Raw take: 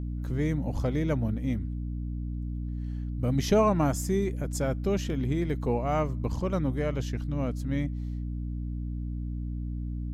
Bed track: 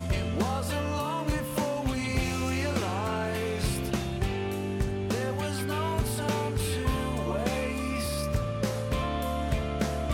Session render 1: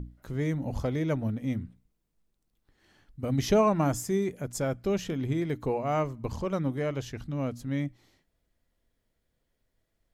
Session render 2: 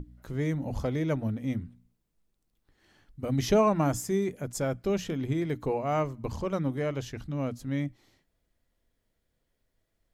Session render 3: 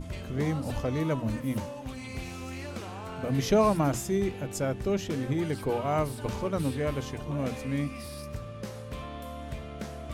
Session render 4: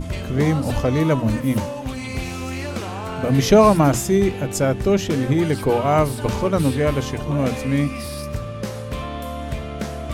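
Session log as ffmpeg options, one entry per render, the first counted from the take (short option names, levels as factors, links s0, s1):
-af "bandreject=f=60:t=h:w=6,bandreject=f=120:t=h:w=6,bandreject=f=180:t=h:w=6,bandreject=f=240:t=h:w=6,bandreject=f=300:t=h:w=6"
-af "bandreject=f=60:t=h:w=6,bandreject=f=120:t=h:w=6,bandreject=f=180:t=h:w=6,bandreject=f=240:t=h:w=6"
-filter_complex "[1:a]volume=0.335[s0];[0:a][s0]amix=inputs=2:normalize=0"
-af "volume=3.35,alimiter=limit=0.794:level=0:latency=1"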